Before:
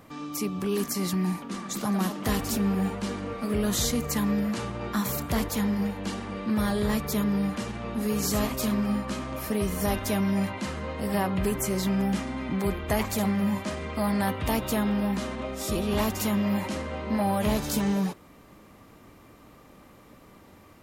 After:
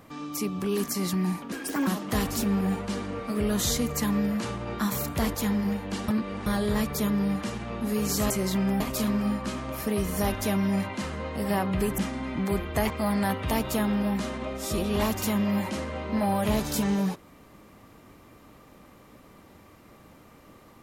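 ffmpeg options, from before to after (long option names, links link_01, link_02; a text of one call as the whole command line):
ffmpeg -i in.wav -filter_complex "[0:a]asplit=9[link_01][link_02][link_03][link_04][link_05][link_06][link_07][link_08][link_09];[link_01]atrim=end=1.524[link_10];[link_02]atrim=start=1.52:end=2.01,asetpts=PTS-STARTPTS,asetrate=61299,aresample=44100,atrim=end_sample=15546,asetpts=PTS-STARTPTS[link_11];[link_03]atrim=start=2.006:end=6.222[link_12];[link_04]atrim=start=6.218:end=6.602,asetpts=PTS-STARTPTS,areverse[link_13];[link_05]atrim=start=6.598:end=8.442[link_14];[link_06]atrim=start=11.618:end=12.122[link_15];[link_07]atrim=start=8.438:end=11.622[link_16];[link_08]atrim=start=12.118:end=13.042[link_17];[link_09]atrim=start=13.878[link_18];[link_10][link_11]acrossfade=duration=0.004:curve1=hsin:curve2=hsin[link_19];[link_19][link_12]acrossfade=duration=0.004:curve1=hsin:curve2=hsin[link_20];[link_20][link_13]acrossfade=duration=0.004:curve1=hsin:curve2=hsin[link_21];[link_21][link_14]acrossfade=duration=0.004:curve1=hsin:curve2=hsin[link_22];[link_22][link_15]acrossfade=duration=0.004:curve1=hsin:curve2=hsin[link_23];[link_23][link_16]acrossfade=duration=0.004:curve1=hsin:curve2=hsin[link_24];[link_24][link_17]acrossfade=duration=0.004:curve1=hsin:curve2=hsin[link_25];[link_25][link_18]acrossfade=duration=0.004:curve1=hsin:curve2=hsin" out.wav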